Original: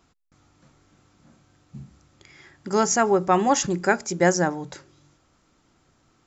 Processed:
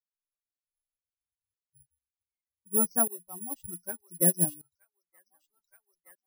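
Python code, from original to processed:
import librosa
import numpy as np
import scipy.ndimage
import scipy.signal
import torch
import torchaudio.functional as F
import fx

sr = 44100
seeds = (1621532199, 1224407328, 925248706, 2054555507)

y = fx.bin_expand(x, sr, power=3.0)
y = fx.tilt_eq(y, sr, slope=-4.5)
y = fx.echo_wet_highpass(y, sr, ms=921, feedback_pct=39, hz=2100.0, wet_db=-8.0)
y = (np.kron(scipy.signal.resample_poly(y, 1, 4), np.eye(4)[0]) * 4)[:len(y)]
y = fx.tremolo_decay(y, sr, direction='swelling', hz=0.65, depth_db=24)
y = y * 10.0 ** (-8.0 / 20.0)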